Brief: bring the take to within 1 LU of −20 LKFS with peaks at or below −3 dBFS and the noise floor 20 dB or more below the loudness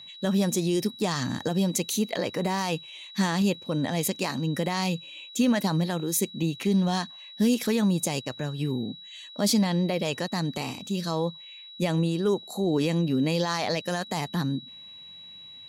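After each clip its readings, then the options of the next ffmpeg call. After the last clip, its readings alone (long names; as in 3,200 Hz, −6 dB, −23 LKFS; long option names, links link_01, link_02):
interfering tone 3,900 Hz; level of the tone −43 dBFS; integrated loudness −27.0 LKFS; sample peak −12.0 dBFS; target loudness −20.0 LKFS
→ -af "bandreject=frequency=3900:width=30"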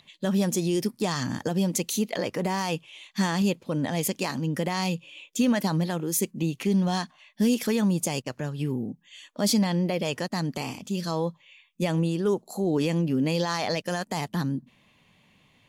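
interfering tone none found; integrated loudness −27.5 LKFS; sample peak −12.0 dBFS; target loudness −20.0 LKFS
→ -af "volume=7.5dB"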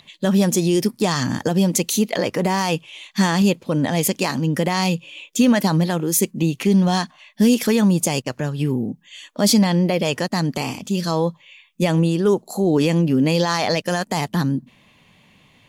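integrated loudness −20.0 LKFS; sample peak −4.5 dBFS; background noise floor −55 dBFS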